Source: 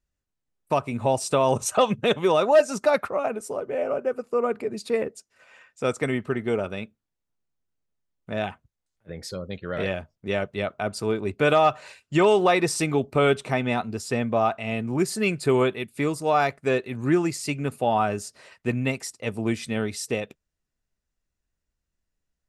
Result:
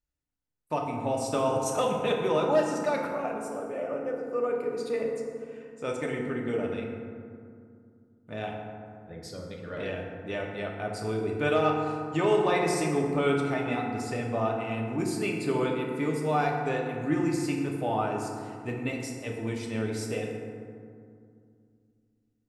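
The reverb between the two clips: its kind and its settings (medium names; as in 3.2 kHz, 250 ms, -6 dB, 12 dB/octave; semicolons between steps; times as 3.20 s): FDN reverb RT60 2.3 s, low-frequency decay 1.45×, high-frequency decay 0.4×, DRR -1 dB; trim -9 dB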